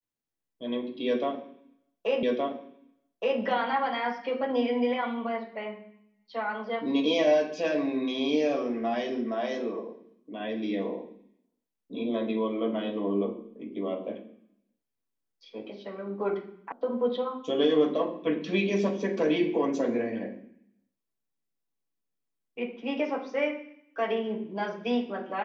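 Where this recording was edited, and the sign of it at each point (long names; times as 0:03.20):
0:02.23: the same again, the last 1.17 s
0:16.72: cut off before it has died away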